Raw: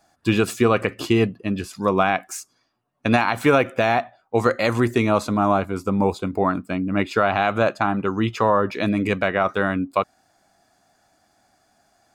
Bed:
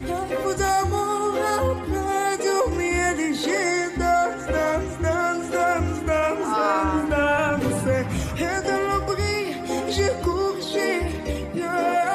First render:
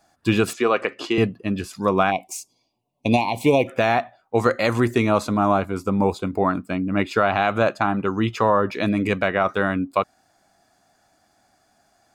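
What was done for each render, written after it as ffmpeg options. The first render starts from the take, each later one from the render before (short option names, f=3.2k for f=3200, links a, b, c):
-filter_complex "[0:a]asettb=1/sr,asplit=3[a][b][c];[a]atrim=end=0.534[d];[b]atrim=start=0.53:end=1.18,asetpts=PTS-STARTPTS,afade=t=in:d=0.004:c=qsin,afade=t=out:st=0.646:d=0.004:c=qsin,highpass=350,lowpass=5.8k[e];[c]atrim=start=1.176[f];[d][e]acrossfade=d=0.004:c1=hsin:c2=qsin[g];[g][f]acrossfade=d=0.004:c1=qsin:c2=hsin,asplit=3[h][i][j];[h]afade=t=out:st=2.1:d=0.02[k];[i]asuperstop=centerf=1500:order=8:qfactor=1.2,afade=t=in:st=2.1:d=0.02,afade=t=out:st=3.67:d=0.02[l];[j]afade=t=in:st=3.67:d=0.02[m];[k][l][m]amix=inputs=3:normalize=0"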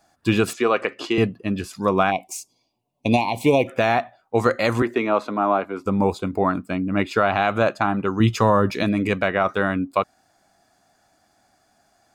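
-filter_complex "[0:a]asettb=1/sr,asplit=3[a][b][c];[a]atrim=end=4.824[d];[b]atrim=start=4.82:end=5.86,asetpts=PTS-STARTPTS,afade=t=in:d=0.004:c=qsin,afade=t=out:st=1.036:d=0.004:c=qsin,acrossover=split=230 3500:gain=0.0708 1 0.141[e][f][g];[e][f][g]amix=inputs=3:normalize=0[h];[c]atrim=start=5.856[i];[d][h]acrossfade=d=0.004:c1=hsin:c2=qsin[j];[j][i]acrossfade=d=0.004:c1=qsin:c2=hsin,asettb=1/sr,asplit=3[k][l][m];[k]atrim=end=8.204[n];[l]atrim=start=8.2:end=8.83,asetpts=PTS-STARTPTS,afade=t=in:d=0.004:c=qsin,afade=t=out:st=0.626:d=0.004:c=qsin,bass=f=250:g=8,treble=f=4k:g=9[o];[m]atrim=start=8.826[p];[n][o]acrossfade=d=0.004:c1=hsin:c2=qsin[q];[q][p]acrossfade=d=0.004:c1=qsin:c2=hsin"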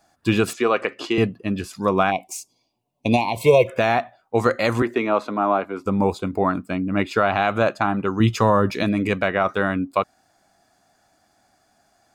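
-filter_complex "[0:a]asettb=1/sr,asplit=3[a][b][c];[a]atrim=end=3.364[d];[b]atrim=start=3.36:end=3.78,asetpts=PTS-STARTPTS,afade=t=in:d=0.004:c=qsin,afade=t=out:st=0.416:d=0.004:c=qsin,aecho=1:1:1.9:0.88,atrim=end_sample=18522[e];[c]atrim=start=3.776[f];[d][e]acrossfade=d=0.004:c1=hsin:c2=qsin[g];[g][f]acrossfade=d=0.004:c1=qsin:c2=hsin"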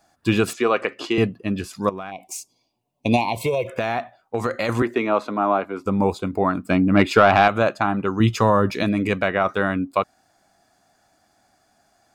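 -filter_complex "[0:a]asettb=1/sr,asplit=3[a][b][c];[a]atrim=end=1.894[d];[b]atrim=start=1.89:end=2.3,asetpts=PTS-STARTPTS,afade=t=in:d=0.004:c=qsin,afade=t=out:st=0.406:d=0.004:c=qsin,acompressor=threshold=-31dB:ratio=4:attack=3.2:release=140:knee=1:detection=peak[e];[c]atrim=start=2.296[f];[d][e]acrossfade=d=0.004:c1=hsin:c2=qsin[g];[g][f]acrossfade=d=0.004:c1=qsin:c2=hsin,asettb=1/sr,asplit=3[h][i][j];[h]atrim=end=3.454[k];[i]atrim=start=3.45:end=4.69,asetpts=PTS-STARTPTS,afade=t=in:d=0.004:c=qsin,afade=t=out:st=1.236:d=0.004:c=qsin,acompressor=threshold=-18dB:ratio=6:attack=3.2:release=140:knee=1:detection=peak[l];[j]atrim=start=4.686[m];[k][l]acrossfade=d=0.004:c1=hsin:c2=qsin[n];[n][m]acrossfade=d=0.004:c1=qsin:c2=hsin,asettb=1/sr,asplit=3[o][p][q];[o]atrim=end=6.654[r];[p]atrim=start=6.65:end=7.48,asetpts=PTS-STARTPTS,afade=t=in:d=0.004:c=qsin,afade=t=out:st=0.826:d=0.004:c=qsin,acontrast=73[s];[q]atrim=start=7.476[t];[r][s]acrossfade=d=0.004:c1=hsin:c2=qsin[u];[u][t]acrossfade=d=0.004:c1=qsin:c2=hsin"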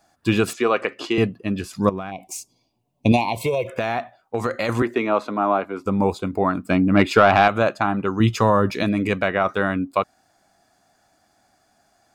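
-filter_complex "[0:a]asettb=1/sr,asplit=3[a][b][c];[a]atrim=end=1.734[d];[b]atrim=start=1.73:end=3.12,asetpts=PTS-STARTPTS,afade=t=in:d=0.004:c=qsin,afade=t=out:st=1.386:d=0.004:c=qsin,lowshelf=f=280:g=9[e];[c]atrim=start=3.116[f];[d][e]acrossfade=d=0.004:c1=hsin:c2=qsin[g];[g][f]acrossfade=d=0.004:c1=qsin:c2=hsin"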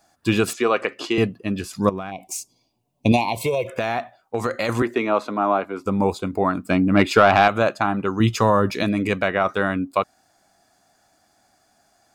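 -af "bass=f=250:g=-1,treble=f=4k:g=3"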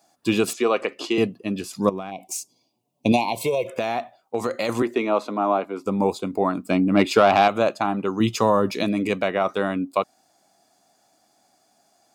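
-af "highpass=170,equalizer=f=1.6k:t=o:w=0.76:g=-7.5"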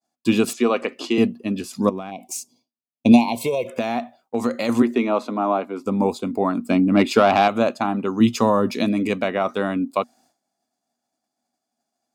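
-af "agate=range=-33dB:threshold=-51dB:ratio=3:detection=peak,equalizer=f=240:w=6.6:g=12.5"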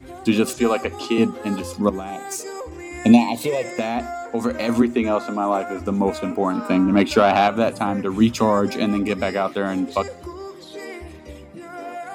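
-filter_complex "[1:a]volume=-11.5dB[a];[0:a][a]amix=inputs=2:normalize=0"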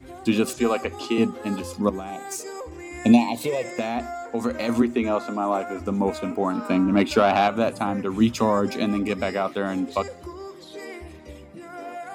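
-af "volume=-3dB"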